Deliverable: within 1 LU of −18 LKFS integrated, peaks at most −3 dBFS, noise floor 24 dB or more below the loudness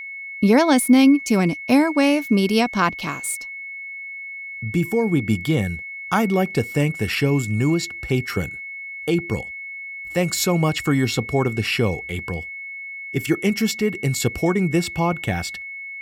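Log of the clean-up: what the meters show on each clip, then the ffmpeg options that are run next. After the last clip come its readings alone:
interfering tone 2,200 Hz; level of the tone −31 dBFS; integrated loudness −21.0 LKFS; sample peak −3.5 dBFS; target loudness −18.0 LKFS
→ -af "bandreject=frequency=2200:width=30"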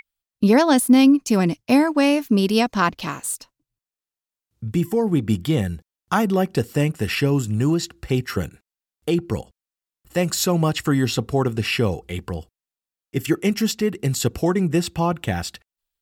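interfering tone none found; integrated loudness −21.0 LKFS; sample peak −4.0 dBFS; target loudness −18.0 LKFS
→ -af "volume=3dB,alimiter=limit=-3dB:level=0:latency=1"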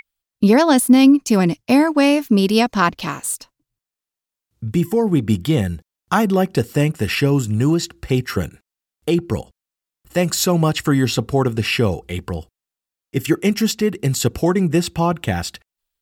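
integrated loudness −18.0 LKFS; sample peak −3.0 dBFS; background noise floor −88 dBFS

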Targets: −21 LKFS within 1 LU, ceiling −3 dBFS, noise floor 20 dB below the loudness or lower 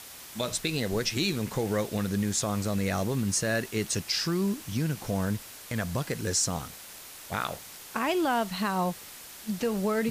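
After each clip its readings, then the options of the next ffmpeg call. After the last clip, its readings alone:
background noise floor −46 dBFS; target noise floor −50 dBFS; integrated loudness −29.5 LKFS; sample peak −14.5 dBFS; target loudness −21.0 LKFS
→ -af "afftdn=noise_reduction=6:noise_floor=-46"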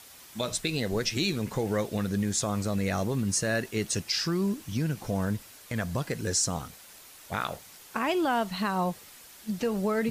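background noise floor −51 dBFS; integrated loudness −29.5 LKFS; sample peak −15.0 dBFS; target loudness −21.0 LKFS
→ -af "volume=8.5dB"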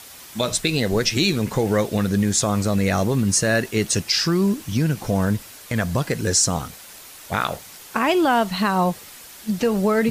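integrated loudness −21.0 LKFS; sample peak −6.5 dBFS; background noise floor −42 dBFS

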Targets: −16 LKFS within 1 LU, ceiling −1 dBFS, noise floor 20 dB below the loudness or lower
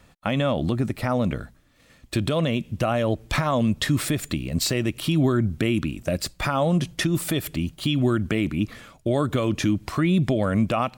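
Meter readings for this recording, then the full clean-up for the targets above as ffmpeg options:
integrated loudness −24.0 LKFS; sample peak −12.0 dBFS; target loudness −16.0 LKFS
→ -af "volume=8dB"

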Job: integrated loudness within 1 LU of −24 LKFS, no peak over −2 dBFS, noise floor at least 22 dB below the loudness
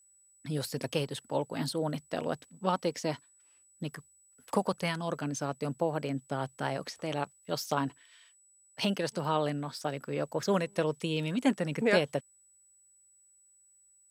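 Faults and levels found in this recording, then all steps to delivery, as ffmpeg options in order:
interfering tone 7,900 Hz; level of the tone −61 dBFS; integrated loudness −33.0 LKFS; sample peak −12.0 dBFS; target loudness −24.0 LKFS
→ -af "bandreject=frequency=7900:width=30"
-af "volume=9dB"

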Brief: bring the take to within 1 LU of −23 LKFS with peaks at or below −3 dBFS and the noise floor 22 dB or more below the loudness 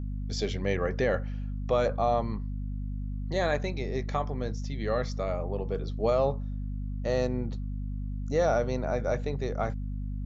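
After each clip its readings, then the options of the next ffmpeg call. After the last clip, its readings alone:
mains hum 50 Hz; hum harmonics up to 250 Hz; level of the hum −31 dBFS; integrated loudness −30.5 LKFS; sample peak −14.5 dBFS; target loudness −23.0 LKFS
→ -af "bandreject=frequency=50:width_type=h:width=4,bandreject=frequency=100:width_type=h:width=4,bandreject=frequency=150:width_type=h:width=4,bandreject=frequency=200:width_type=h:width=4,bandreject=frequency=250:width_type=h:width=4"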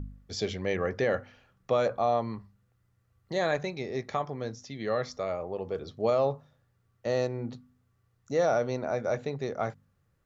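mains hum none found; integrated loudness −31.0 LKFS; sample peak −16.0 dBFS; target loudness −23.0 LKFS
→ -af "volume=8dB"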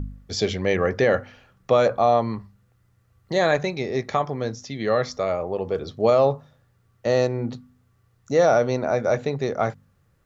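integrated loudness −23.0 LKFS; sample peak −8.0 dBFS; background noise floor −63 dBFS

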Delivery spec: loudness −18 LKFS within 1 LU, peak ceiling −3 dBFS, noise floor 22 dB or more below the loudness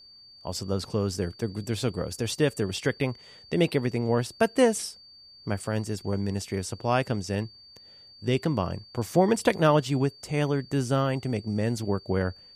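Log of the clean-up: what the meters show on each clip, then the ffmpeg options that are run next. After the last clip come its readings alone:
interfering tone 4,600 Hz; level of the tone −49 dBFS; integrated loudness −27.5 LKFS; sample peak −8.5 dBFS; target loudness −18.0 LKFS
→ -af "bandreject=frequency=4600:width=30"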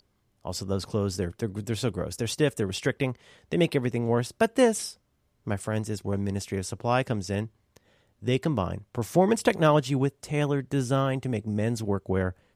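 interfering tone none found; integrated loudness −27.5 LKFS; sample peak −8.5 dBFS; target loudness −18.0 LKFS
→ -af "volume=9.5dB,alimiter=limit=-3dB:level=0:latency=1"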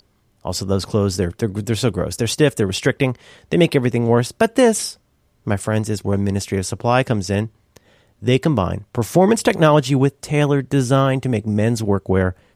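integrated loudness −18.5 LKFS; sample peak −3.0 dBFS; background noise floor −61 dBFS

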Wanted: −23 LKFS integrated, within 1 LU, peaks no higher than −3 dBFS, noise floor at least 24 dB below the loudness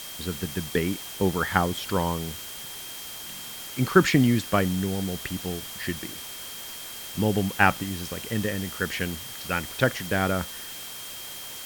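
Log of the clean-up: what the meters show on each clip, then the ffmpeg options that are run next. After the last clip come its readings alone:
interfering tone 3,200 Hz; level of the tone −43 dBFS; background noise floor −39 dBFS; target noise floor −52 dBFS; integrated loudness −27.5 LKFS; sample peak −3.0 dBFS; target loudness −23.0 LKFS
→ -af "bandreject=frequency=3200:width=30"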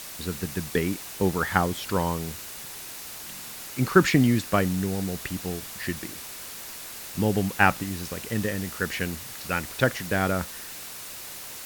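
interfering tone none found; background noise floor −40 dBFS; target noise floor −52 dBFS
→ -af "afftdn=noise_reduction=12:noise_floor=-40"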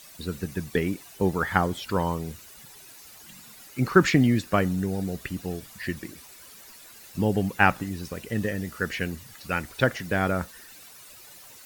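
background noise floor −48 dBFS; target noise floor −51 dBFS
→ -af "afftdn=noise_reduction=6:noise_floor=-48"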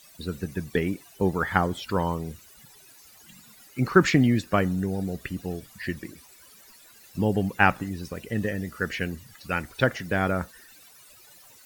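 background noise floor −53 dBFS; integrated loudness −26.5 LKFS; sample peak −3.0 dBFS; target loudness −23.0 LKFS
→ -af "volume=3.5dB,alimiter=limit=-3dB:level=0:latency=1"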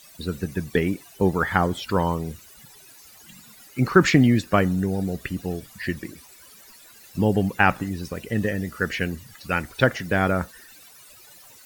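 integrated loudness −23.5 LKFS; sample peak −3.0 dBFS; background noise floor −49 dBFS

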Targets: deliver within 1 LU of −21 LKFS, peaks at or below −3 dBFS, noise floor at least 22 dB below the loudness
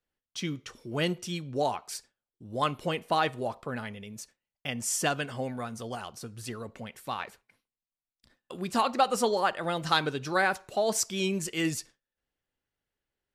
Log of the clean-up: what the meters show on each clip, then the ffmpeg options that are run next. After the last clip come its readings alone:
integrated loudness −30.5 LKFS; sample peak −9.0 dBFS; target loudness −21.0 LKFS
→ -af "volume=9.5dB,alimiter=limit=-3dB:level=0:latency=1"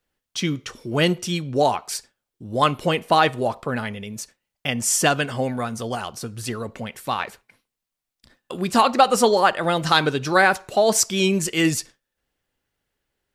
integrated loudness −21.5 LKFS; sample peak −3.0 dBFS; background noise floor −84 dBFS

